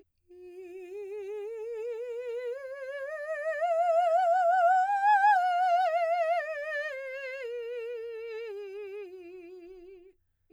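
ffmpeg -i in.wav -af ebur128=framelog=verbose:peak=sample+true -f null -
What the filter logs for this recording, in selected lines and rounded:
Integrated loudness:
  I:         -28.9 LUFS
  Threshold: -40.1 LUFS
Loudness range:
  LRA:        13.6 LU
  Threshold: -49.0 LUFS
  LRA low:   -39.1 LUFS
  LRA high:  -25.5 LUFS
Sample peak:
  Peak:      -15.0 dBFS
True peak:
  Peak:      -15.0 dBFS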